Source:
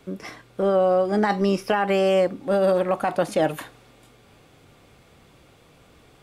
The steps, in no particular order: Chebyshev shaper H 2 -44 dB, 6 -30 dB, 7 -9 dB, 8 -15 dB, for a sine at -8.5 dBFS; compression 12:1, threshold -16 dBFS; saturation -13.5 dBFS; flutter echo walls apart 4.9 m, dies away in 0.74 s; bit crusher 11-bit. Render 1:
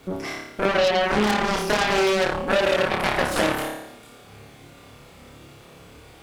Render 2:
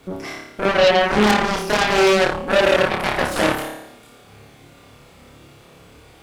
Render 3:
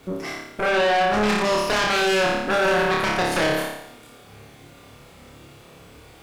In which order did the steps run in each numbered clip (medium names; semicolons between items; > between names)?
saturation > flutter echo > bit crusher > Chebyshev shaper > compression; saturation > compression > flutter echo > Chebyshev shaper > bit crusher; bit crusher > Chebyshev shaper > flutter echo > saturation > compression